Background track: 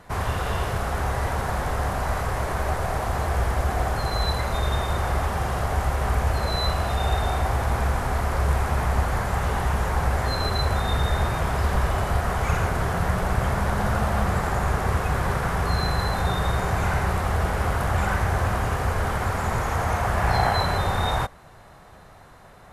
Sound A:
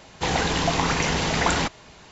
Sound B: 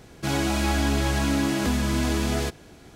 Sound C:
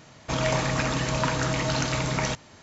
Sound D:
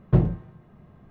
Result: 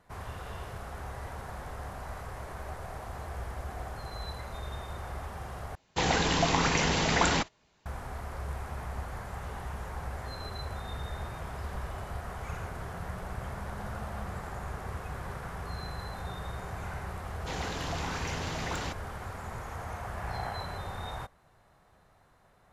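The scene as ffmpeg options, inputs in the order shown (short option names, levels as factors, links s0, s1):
-filter_complex "[1:a]asplit=2[s0][s1];[0:a]volume=0.178[s2];[s0]agate=range=0.141:threshold=0.00794:ratio=16:release=100:detection=peak[s3];[s1]asoftclip=type=tanh:threshold=0.15[s4];[s2]asplit=2[s5][s6];[s5]atrim=end=5.754[s7];[s3]atrim=end=2.11,asetpts=PTS-STARTPTS,volume=0.668[s8];[s6]atrim=start=7.856[s9];[s4]atrim=end=2.11,asetpts=PTS-STARTPTS,volume=0.251,afade=t=in:d=0.004:c=hsin,afade=t=out:st=2.106:d=0.004:c=hsin,adelay=17250[s10];[s7][s8]acrossfade=d=0.004:c1=hsin:c2=hsin[s11];[s11][s9]acrossfade=d=0.004:c1=hsin:c2=hsin[s12];[s12][s10]amix=inputs=2:normalize=0"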